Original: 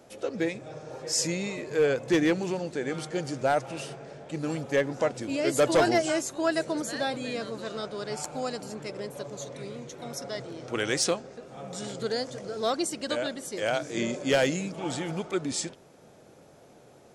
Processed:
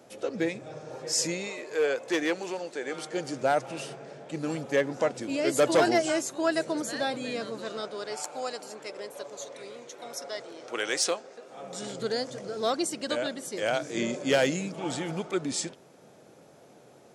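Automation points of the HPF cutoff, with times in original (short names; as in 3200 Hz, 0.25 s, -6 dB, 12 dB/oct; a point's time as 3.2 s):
1.11 s 110 Hz
1.54 s 430 Hz
2.84 s 430 Hz
3.46 s 150 Hz
7.51 s 150 Hz
8.23 s 430 Hz
11.42 s 430 Hz
12.05 s 120 Hz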